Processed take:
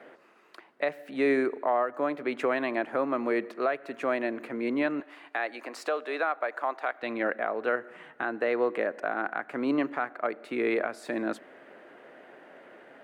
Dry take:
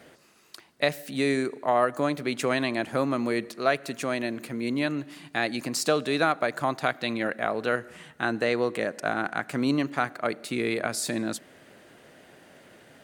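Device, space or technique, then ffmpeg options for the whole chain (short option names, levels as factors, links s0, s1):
DJ mixer with the lows and highs turned down: -filter_complex "[0:a]acrossover=split=260 2400:gain=0.0708 1 0.0794[s0][s1][s2];[s0][s1][s2]amix=inputs=3:normalize=0,alimiter=limit=0.1:level=0:latency=1:release=484,asettb=1/sr,asplit=3[s3][s4][s5];[s3]atrim=end=5.004[s6];[s4]atrim=start=5:end=7.03,asetpts=PTS-STARTPTS,afade=t=in:d=0.004:c=qsin,afade=t=out:st=2.026:d=0.004:c=qsin,highpass=480[s7];[s5]atrim=start=7.026[s8];[s6][s7]acrossfade=d=0.004:c1=hsin:c2=qsin[s9];[s9][s8]acrossfade=d=0.004:c1=qsin:c2=hsin,volume=1.58"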